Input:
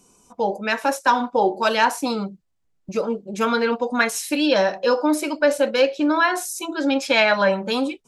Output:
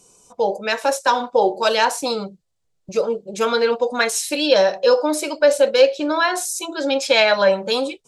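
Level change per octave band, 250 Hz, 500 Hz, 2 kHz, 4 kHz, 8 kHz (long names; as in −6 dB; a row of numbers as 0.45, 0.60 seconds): −4.0, +4.0, −0.5, +4.5, +5.0 decibels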